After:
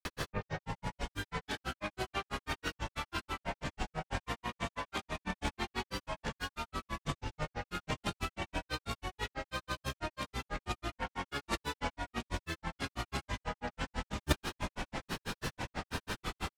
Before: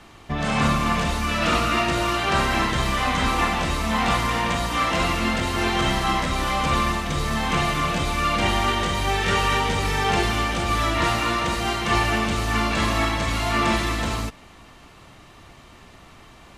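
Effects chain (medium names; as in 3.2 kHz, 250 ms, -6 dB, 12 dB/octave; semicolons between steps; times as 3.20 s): peak limiter -15.5 dBFS, peak gain reduction 7.5 dB; compressor with a negative ratio -32 dBFS, ratio -0.5; granulator 102 ms, grains 6.1 per s, pitch spread up and down by 7 st; trim +2.5 dB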